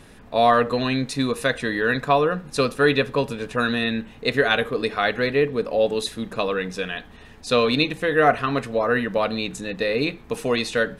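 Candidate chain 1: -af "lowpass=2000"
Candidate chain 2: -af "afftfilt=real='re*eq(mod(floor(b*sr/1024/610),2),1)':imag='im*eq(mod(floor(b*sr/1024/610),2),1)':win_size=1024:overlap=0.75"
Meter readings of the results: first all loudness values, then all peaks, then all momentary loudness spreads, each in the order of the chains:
-23.0 LUFS, -28.5 LUFS; -5.0 dBFS, -7.5 dBFS; 9 LU, 13 LU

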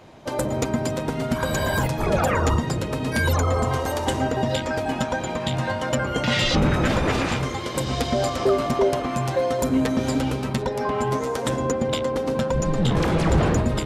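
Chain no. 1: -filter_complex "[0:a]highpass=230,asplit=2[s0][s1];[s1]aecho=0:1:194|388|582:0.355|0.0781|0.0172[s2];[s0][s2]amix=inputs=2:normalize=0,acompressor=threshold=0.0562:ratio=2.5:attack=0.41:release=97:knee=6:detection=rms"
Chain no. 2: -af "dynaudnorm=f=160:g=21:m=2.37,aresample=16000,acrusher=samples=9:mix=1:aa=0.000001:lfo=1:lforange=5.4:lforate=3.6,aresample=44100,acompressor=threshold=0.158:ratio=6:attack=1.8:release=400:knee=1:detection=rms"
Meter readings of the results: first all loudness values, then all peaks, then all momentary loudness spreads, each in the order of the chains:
-29.5 LUFS, -23.0 LUFS; -17.5 dBFS, -9.5 dBFS; 3 LU, 3 LU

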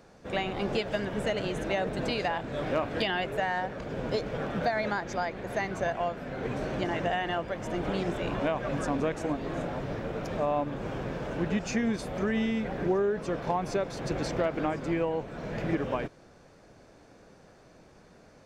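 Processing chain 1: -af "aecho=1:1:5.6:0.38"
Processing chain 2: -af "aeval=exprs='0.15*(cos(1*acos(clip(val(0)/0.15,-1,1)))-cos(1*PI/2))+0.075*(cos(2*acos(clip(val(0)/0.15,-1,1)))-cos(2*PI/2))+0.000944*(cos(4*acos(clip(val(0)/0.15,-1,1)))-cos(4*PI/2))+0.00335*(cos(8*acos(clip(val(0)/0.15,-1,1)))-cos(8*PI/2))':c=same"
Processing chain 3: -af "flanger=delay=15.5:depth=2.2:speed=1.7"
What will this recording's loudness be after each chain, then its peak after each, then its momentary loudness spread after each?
-30.5 LUFS, -30.5 LUFS, -34.0 LUFS; -14.0 dBFS, -11.0 dBFS, -18.0 dBFS; 6 LU, 6 LU, 6 LU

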